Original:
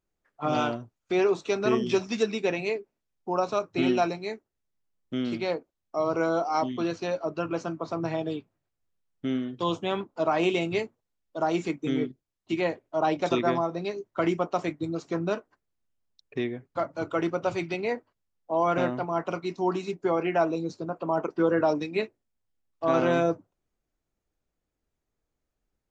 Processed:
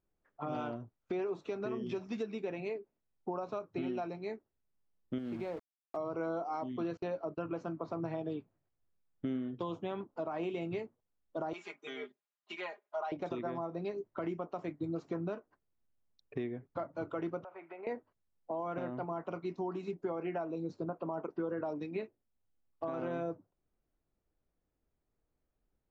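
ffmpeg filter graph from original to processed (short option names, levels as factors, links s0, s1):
-filter_complex "[0:a]asettb=1/sr,asplit=3[s0][s1][s2];[s0]atrim=end=5.184[s3];[s1]atrim=start=5.18:end=5.97,asetpts=PTS-STARTPTS,afade=t=in:d=0.004:c=qsin,afade=t=out:st=0.786:d=0.004:c=qsin,highshelf=f=4800:g=-11.5,acompressor=threshold=0.0251:ratio=4:attack=3.2:release=140:knee=1:detection=peak,aeval=exprs='val(0)*gte(abs(val(0)),0.00708)':c=same[s4];[s2]atrim=start=5.966[s5];[s3][s4]acrossfade=d=0.004:c1=hsin:c2=qsin[s6];[s6][s5]acrossfade=d=0.004:c1=qsin:c2=hsin,asettb=1/sr,asplit=3[s7][s8][s9];[s7]atrim=end=6.974[s10];[s8]atrim=start=6.97:end=7.5,asetpts=PTS-STARTPTS,afade=t=in:d=0.004:c=qsin,afade=t=out:st=0.526:d=0.004:c=qsin,acrossover=split=5300[s11][s12];[s12]acompressor=threshold=0.00126:ratio=4:attack=1:release=60[s13];[s11][s13]amix=inputs=2:normalize=0,agate=range=0.0501:threshold=0.00794:ratio=16:release=100:detection=peak[s14];[s9]atrim=start=7.496[s15];[s10][s14]acrossfade=d=0.004:c1=hsin:c2=qsin[s16];[s16][s15]acrossfade=d=0.004:c1=qsin:c2=hsin,asettb=1/sr,asplit=3[s17][s18][s19];[s17]atrim=end=11.534[s20];[s18]atrim=start=11.53:end=13.12,asetpts=PTS-STARTPTS,afade=t=in:d=0.004:c=qsin,afade=t=out:st=1.586:d=0.004:c=qsin,highpass=990,aecho=1:1:4.9:0.95,atrim=end_sample=70119[s21];[s19]atrim=start=13.116[s22];[s20][s21]acrossfade=d=0.004:c1=hsin:c2=qsin[s23];[s23][s22]acrossfade=d=0.004:c1=qsin:c2=hsin,asettb=1/sr,asplit=3[s24][s25][s26];[s24]atrim=end=17.444[s27];[s25]atrim=start=17.44:end=17.87,asetpts=PTS-STARTPTS,afade=t=in:d=0.004:c=qsin,afade=t=out:st=0.426:d=0.004:c=qsin,acrossover=split=560 2100:gain=0.158 1 0.0891[s28][s29][s30];[s28][s29][s30]amix=inputs=3:normalize=0,acompressor=threshold=0.0112:ratio=6:attack=3.2:release=140:knee=1:detection=peak,highpass=350,lowpass=2900[s31];[s26]atrim=start=17.866[s32];[s27][s31]acrossfade=d=0.004:c1=hsin:c2=qsin[s33];[s33][s32]acrossfade=d=0.004:c1=qsin:c2=hsin,alimiter=limit=0.0794:level=0:latency=1:release=442,acompressor=threshold=0.0158:ratio=2,lowpass=f=1300:p=1"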